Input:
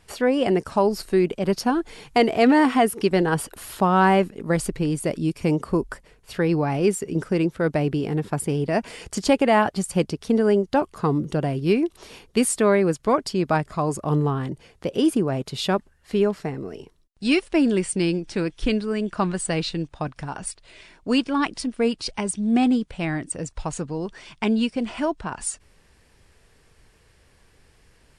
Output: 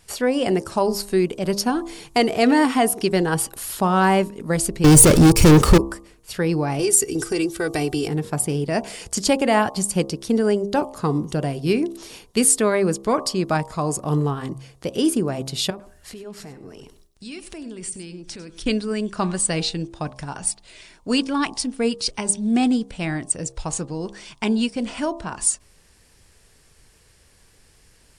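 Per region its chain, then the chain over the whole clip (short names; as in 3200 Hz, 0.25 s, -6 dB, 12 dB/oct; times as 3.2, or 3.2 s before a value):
4.84–5.78 comb 2.3 ms, depth 41% + sample leveller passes 5 + low shelf 190 Hz +10 dB
6.79–8.08 high shelf 3500 Hz +11 dB + comb 2.6 ms, depth 77% + compressor 4:1, threshold -18 dBFS
15.7–18.66 transient shaper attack -1 dB, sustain +7 dB + compressor 3:1, threshold -39 dBFS + echo 99 ms -14.5 dB
whole clip: tone controls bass +1 dB, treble +9 dB; de-hum 67.08 Hz, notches 18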